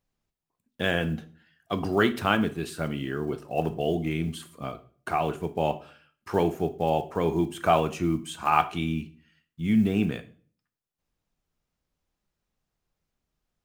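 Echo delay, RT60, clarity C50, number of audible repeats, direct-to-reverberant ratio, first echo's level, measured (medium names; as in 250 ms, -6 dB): no echo, 0.45 s, 15.5 dB, no echo, 10.5 dB, no echo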